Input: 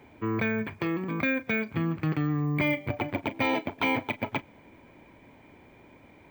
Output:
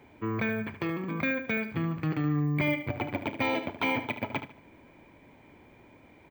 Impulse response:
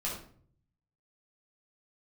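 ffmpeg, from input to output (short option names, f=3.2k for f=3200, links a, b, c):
-af "aecho=1:1:74|148|222:0.299|0.0866|0.0251,volume=-2dB"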